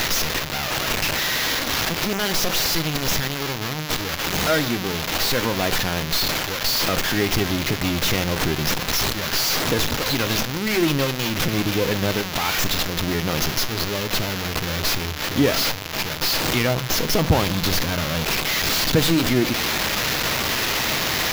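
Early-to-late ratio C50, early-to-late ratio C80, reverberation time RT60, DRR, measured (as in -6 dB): 19.0 dB, 23.0 dB, 0.55 s, 11.5 dB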